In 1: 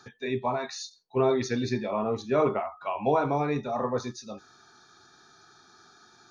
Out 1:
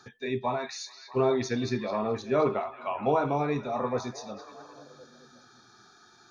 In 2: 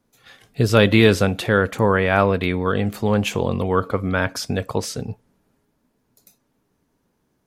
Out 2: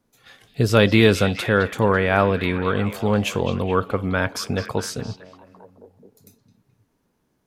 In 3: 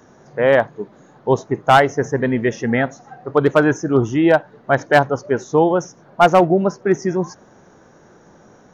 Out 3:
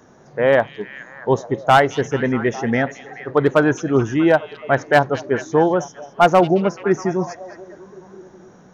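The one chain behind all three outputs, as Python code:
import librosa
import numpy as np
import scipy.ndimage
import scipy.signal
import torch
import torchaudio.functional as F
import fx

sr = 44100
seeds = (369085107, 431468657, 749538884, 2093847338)

y = fx.echo_stepped(x, sr, ms=213, hz=3600.0, octaves=-0.7, feedback_pct=70, wet_db=-8.5)
y = F.gain(torch.from_numpy(y), -1.0).numpy()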